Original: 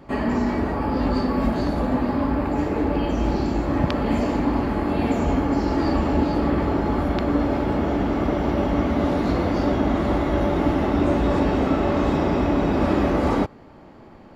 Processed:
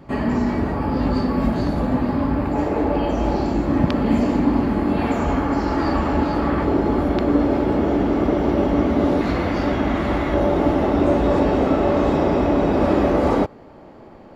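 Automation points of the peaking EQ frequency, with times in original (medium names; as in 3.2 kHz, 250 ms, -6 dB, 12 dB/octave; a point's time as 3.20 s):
peaking EQ +5.5 dB 1.4 oct
130 Hz
from 2.55 s 660 Hz
from 3.53 s 220 Hz
from 4.97 s 1.3 kHz
from 6.64 s 380 Hz
from 9.21 s 2.1 kHz
from 10.34 s 530 Hz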